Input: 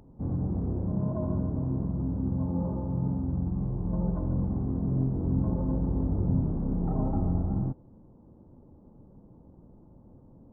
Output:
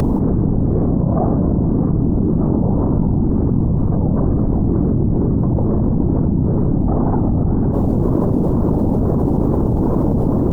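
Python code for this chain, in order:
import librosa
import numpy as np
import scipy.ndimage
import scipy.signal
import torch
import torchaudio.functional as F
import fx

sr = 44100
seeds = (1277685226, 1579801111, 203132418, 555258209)

y = fx.whisperise(x, sr, seeds[0])
y = fx.wow_flutter(y, sr, seeds[1], rate_hz=2.1, depth_cents=150.0)
y = fx.env_flatten(y, sr, amount_pct=100)
y = y * 10.0 ** (7.5 / 20.0)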